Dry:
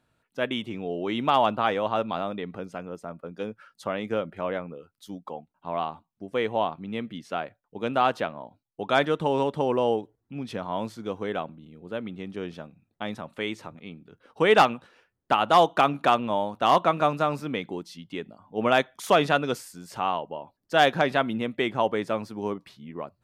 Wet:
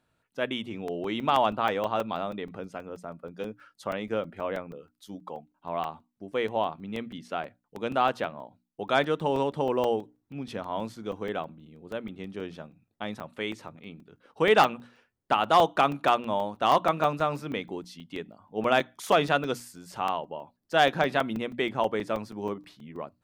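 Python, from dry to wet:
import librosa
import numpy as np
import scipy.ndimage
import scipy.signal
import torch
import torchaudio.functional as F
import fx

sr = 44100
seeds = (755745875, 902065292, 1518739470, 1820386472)

y = fx.hum_notches(x, sr, base_hz=60, count=5)
y = fx.buffer_crackle(y, sr, first_s=0.88, period_s=0.16, block=128, kind='zero')
y = F.gain(torch.from_numpy(y), -2.0).numpy()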